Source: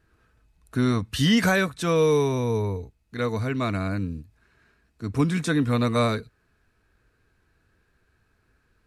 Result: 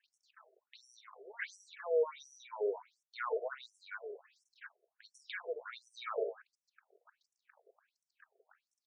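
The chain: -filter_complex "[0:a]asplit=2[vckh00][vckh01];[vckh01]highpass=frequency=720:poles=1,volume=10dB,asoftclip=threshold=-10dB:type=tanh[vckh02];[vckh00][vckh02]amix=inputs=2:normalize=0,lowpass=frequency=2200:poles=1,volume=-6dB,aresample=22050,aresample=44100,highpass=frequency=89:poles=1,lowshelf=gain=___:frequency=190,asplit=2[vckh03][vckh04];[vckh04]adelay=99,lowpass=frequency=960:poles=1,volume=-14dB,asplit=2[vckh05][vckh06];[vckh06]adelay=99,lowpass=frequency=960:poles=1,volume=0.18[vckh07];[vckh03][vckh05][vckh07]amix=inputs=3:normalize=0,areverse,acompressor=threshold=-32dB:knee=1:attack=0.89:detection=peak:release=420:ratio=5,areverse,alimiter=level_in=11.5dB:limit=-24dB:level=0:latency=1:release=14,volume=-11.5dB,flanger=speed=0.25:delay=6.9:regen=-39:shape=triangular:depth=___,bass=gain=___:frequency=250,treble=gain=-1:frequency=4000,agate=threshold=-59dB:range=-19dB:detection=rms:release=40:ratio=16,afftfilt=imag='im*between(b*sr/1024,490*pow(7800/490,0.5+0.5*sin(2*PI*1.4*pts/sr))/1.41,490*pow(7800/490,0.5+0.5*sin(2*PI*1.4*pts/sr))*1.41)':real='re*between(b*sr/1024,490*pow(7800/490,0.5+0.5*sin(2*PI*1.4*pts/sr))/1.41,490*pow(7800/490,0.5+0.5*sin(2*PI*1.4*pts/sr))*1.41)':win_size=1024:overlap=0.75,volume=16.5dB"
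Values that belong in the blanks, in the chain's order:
11.5, 4.1, 11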